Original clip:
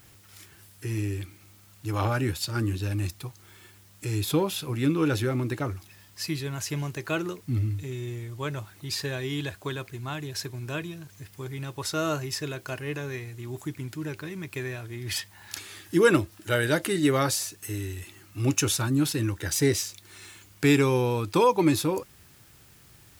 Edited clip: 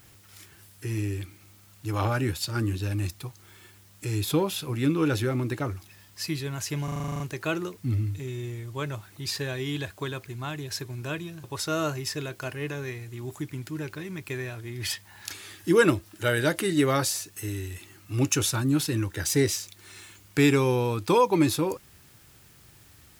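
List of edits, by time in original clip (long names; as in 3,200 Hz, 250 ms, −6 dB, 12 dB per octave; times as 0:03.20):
0:06.84: stutter 0.04 s, 10 plays
0:11.08–0:11.70: remove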